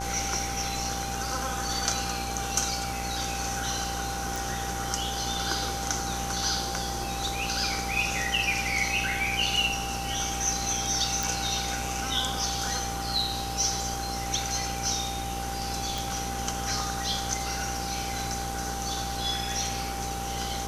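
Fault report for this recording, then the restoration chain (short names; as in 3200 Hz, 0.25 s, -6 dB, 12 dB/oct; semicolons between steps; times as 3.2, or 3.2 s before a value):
buzz 60 Hz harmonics 23 -36 dBFS
tone 790 Hz -34 dBFS
4.36 pop
11.23 pop
15.98 pop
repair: de-click; de-hum 60 Hz, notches 23; notch 790 Hz, Q 30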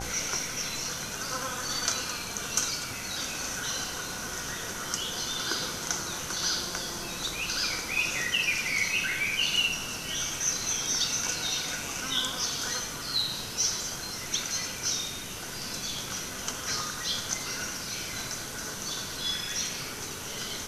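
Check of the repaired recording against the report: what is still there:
none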